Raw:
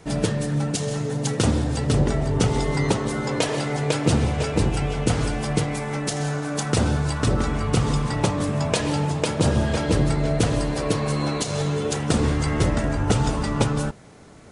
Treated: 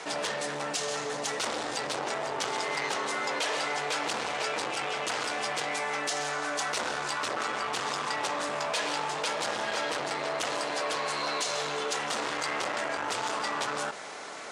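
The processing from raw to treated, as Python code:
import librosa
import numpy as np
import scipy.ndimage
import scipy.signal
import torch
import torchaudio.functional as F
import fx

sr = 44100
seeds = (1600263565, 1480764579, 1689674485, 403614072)

y = np.clip(10.0 ** (23.5 / 20.0) * x, -1.0, 1.0) / 10.0 ** (23.5 / 20.0)
y = fx.bandpass_edges(y, sr, low_hz=730.0, high_hz=7300.0)
y = fx.env_flatten(y, sr, amount_pct=50)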